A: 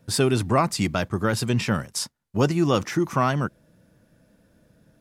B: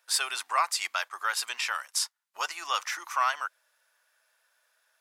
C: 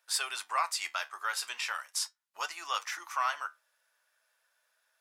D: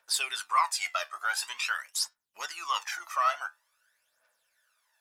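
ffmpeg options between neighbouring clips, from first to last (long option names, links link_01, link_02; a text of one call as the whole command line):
ffmpeg -i in.wav -af "highpass=frequency=960:width=0.5412,highpass=frequency=960:width=1.3066" out.wav
ffmpeg -i in.wav -af "flanger=delay=8.9:depth=5:regen=-63:speed=0.4:shape=sinusoidal" out.wav
ffmpeg -i in.wav -af "aphaser=in_gain=1:out_gain=1:delay=1.7:decay=0.66:speed=0.47:type=triangular" out.wav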